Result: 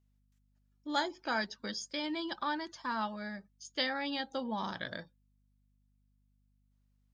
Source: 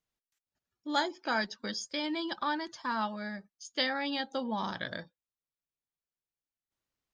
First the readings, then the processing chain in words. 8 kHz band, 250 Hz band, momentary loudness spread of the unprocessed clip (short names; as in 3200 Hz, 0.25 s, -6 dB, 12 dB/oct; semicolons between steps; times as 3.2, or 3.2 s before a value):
-2.5 dB, -2.5 dB, 9 LU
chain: hum 50 Hz, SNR 33 dB; gain -2.5 dB